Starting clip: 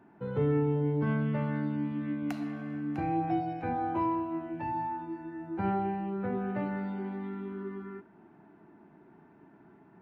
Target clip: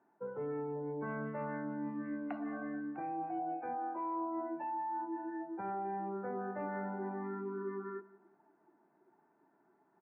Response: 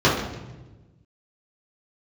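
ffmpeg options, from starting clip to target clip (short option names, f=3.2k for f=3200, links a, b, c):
-af "highpass=540,afftdn=nr=16:nf=-46,lowpass=1.8k,aemphasis=mode=reproduction:type=bsi,areverse,acompressor=threshold=-42dB:ratio=16,areverse,aecho=1:1:179|358|537:0.1|0.04|0.016,volume=6.5dB"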